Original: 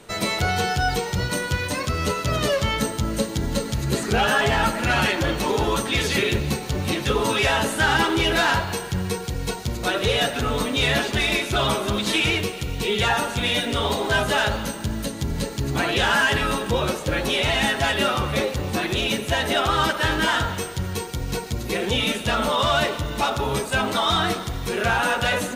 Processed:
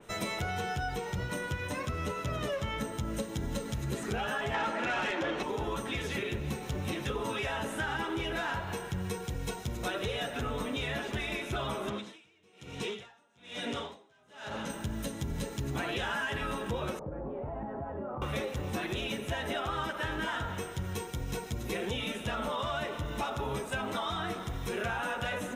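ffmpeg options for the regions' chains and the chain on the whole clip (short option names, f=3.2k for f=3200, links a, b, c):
-filter_complex "[0:a]asettb=1/sr,asplit=3[a][b][c];[a]atrim=end=4.544[d];[b]atrim=start=4.54:end=5.43,asetpts=PTS-STARTPTS,afade=t=in:d=0.004:c=qsin,afade=t=out:st=0.886:d=0.004:c=qsin,highpass=44,acrossover=split=220 6700:gain=0.112 1 0.126[e][f][g];[e][f][g]amix=inputs=3:normalize=0,aeval=exprs='0.335*sin(PI/2*2*val(0)/0.335)':c=same[h];[c]atrim=start=5.426[i];[d][h]acrossfade=d=0.004:c1=hsin:c2=qsin[j];[j][i]acrossfade=d=0.004:c1=qsin:c2=hsin,asettb=1/sr,asplit=3[k][l][m];[k]atrim=end=11.894[n];[l]atrim=start=11.89:end=14.7,asetpts=PTS-STARTPTS,afade=t=in:d=0.004:c=qsin,afade=t=out:st=2.806:d=0.004:c=qsin,volume=20dB,asoftclip=hard,volume=-20dB,highpass=140,lowpass=7.9k,aeval=exprs='val(0)*pow(10,-35*(0.5-0.5*cos(2*PI*1.1*n/s))/20)':c=same[o];[m]atrim=start=14.696[p];[n][o]acrossfade=d=0.004:c1=hsin:c2=qsin[q];[q][p]acrossfade=d=0.004:c1=qsin:c2=hsin,asettb=1/sr,asplit=3[r][s][t];[r]atrim=end=16.994[u];[s]atrim=start=16.99:end=18.22,asetpts=PTS-STARTPTS,afade=t=in:d=0.004:c=qsin,afade=t=out:st=1.226:d=0.004:c=qsin,lowpass=f=1k:w=0.5412,lowpass=f=1k:w=1.3066,acompressor=threshold=-27dB:ratio=6:attack=3.2:release=140:knee=1:detection=peak[v];[t]atrim=start=18.216[w];[u][v]acrossfade=d=0.004:c1=hsin:c2=qsin[x];[x][w]acrossfade=d=0.004:c1=qsin:c2=hsin,acompressor=threshold=-23dB:ratio=6,bandreject=f=4.5k:w=5.1,adynamicequalizer=threshold=0.00891:dfrequency=3100:dqfactor=0.7:tfrequency=3100:tqfactor=0.7:attack=5:release=100:ratio=0.375:range=3:mode=cutabove:tftype=highshelf,volume=-7dB"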